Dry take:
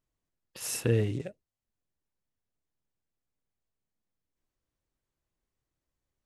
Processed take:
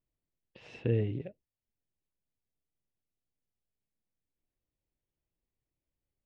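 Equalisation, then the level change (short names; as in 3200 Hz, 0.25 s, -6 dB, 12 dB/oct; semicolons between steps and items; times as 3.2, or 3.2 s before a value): LPF 2900 Hz 24 dB/oct; bell 1300 Hz -12 dB 1 oct; -2.5 dB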